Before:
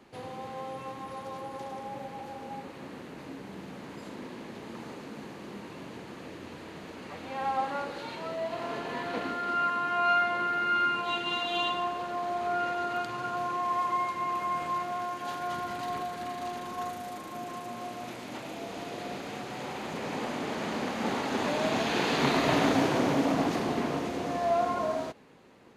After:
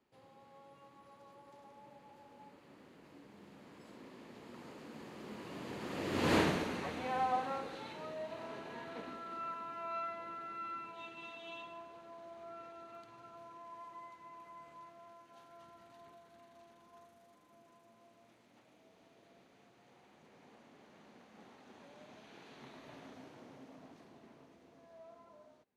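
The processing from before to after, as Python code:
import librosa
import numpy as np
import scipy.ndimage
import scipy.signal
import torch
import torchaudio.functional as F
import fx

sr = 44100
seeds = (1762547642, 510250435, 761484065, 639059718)

y = fx.doppler_pass(x, sr, speed_mps=15, closest_m=1.3, pass_at_s=6.36)
y = y * librosa.db_to_amplitude(16.5)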